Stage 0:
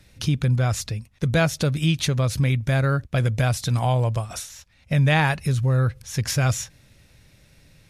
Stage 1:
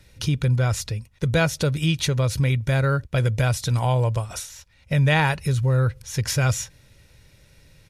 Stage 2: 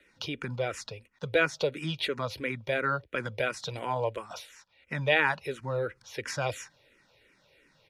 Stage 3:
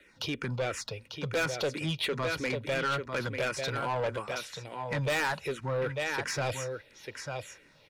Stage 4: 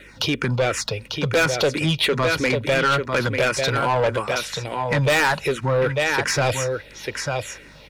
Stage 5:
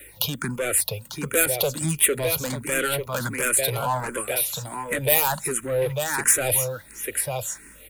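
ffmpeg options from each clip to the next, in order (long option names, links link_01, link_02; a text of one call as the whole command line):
ffmpeg -i in.wav -af "aecho=1:1:2.1:0.31" out.wav
ffmpeg -i in.wav -filter_complex "[0:a]acrossover=split=240 4100:gain=0.0708 1 0.178[link_01][link_02][link_03];[link_01][link_02][link_03]amix=inputs=3:normalize=0,asplit=2[link_04][link_05];[link_05]afreqshift=-2.9[link_06];[link_04][link_06]amix=inputs=2:normalize=1" out.wav
ffmpeg -i in.wav -filter_complex "[0:a]asplit=2[link_01][link_02];[link_02]aecho=0:1:895:0.355[link_03];[link_01][link_03]amix=inputs=2:normalize=0,asoftclip=type=tanh:threshold=-29dB,volume=3.5dB" out.wav
ffmpeg -i in.wav -filter_complex "[0:a]asplit=2[link_01][link_02];[link_02]acompressor=threshold=-39dB:ratio=6,volume=-1.5dB[link_03];[link_01][link_03]amix=inputs=2:normalize=0,aeval=exprs='val(0)+0.001*(sin(2*PI*50*n/s)+sin(2*PI*2*50*n/s)/2+sin(2*PI*3*50*n/s)/3+sin(2*PI*4*50*n/s)/4+sin(2*PI*5*50*n/s)/5)':channel_layout=same,volume=9dB" out.wav
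ffmpeg -i in.wav -filter_complex "[0:a]acrossover=split=360[link_01][link_02];[link_02]aexciter=amount=13.7:drive=6.3:freq=7900[link_03];[link_01][link_03]amix=inputs=2:normalize=0,asplit=2[link_04][link_05];[link_05]afreqshift=1.4[link_06];[link_04][link_06]amix=inputs=2:normalize=1,volume=-2.5dB" out.wav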